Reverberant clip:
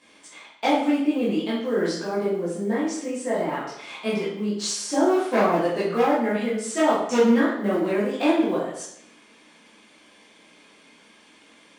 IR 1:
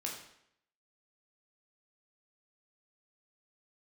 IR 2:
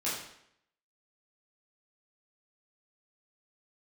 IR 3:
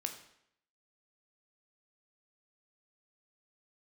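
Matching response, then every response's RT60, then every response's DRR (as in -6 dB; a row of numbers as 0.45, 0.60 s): 2; 0.70, 0.70, 0.70 s; -1.5, -9.5, 5.0 dB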